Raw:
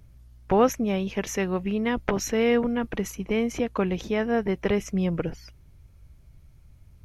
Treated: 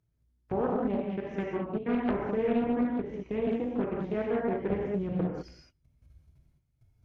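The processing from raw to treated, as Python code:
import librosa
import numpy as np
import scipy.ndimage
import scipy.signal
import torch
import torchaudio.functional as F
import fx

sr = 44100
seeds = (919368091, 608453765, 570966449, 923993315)

y = fx.low_shelf(x, sr, hz=430.0, db=4.5)
y = y + 10.0 ** (-20.5 / 20.0) * np.pad(y, (int(122 * sr / 1000.0), 0))[:len(y)]
y = fx.level_steps(y, sr, step_db=22)
y = fx.highpass(y, sr, hz=110.0, slope=6)
y = fx.env_lowpass_down(y, sr, base_hz=1700.0, full_db=-25.0)
y = fx.lowpass(y, sr, hz=3900.0, slope=12, at=(0.64, 3.36))
y = fx.rev_gated(y, sr, seeds[0], gate_ms=230, shape='flat', drr_db=-3.0)
y = fx.doppler_dist(y, sr, depth_ms=0.42)
y = F.gain(torch.from_numpy(y), -8.0).numpy()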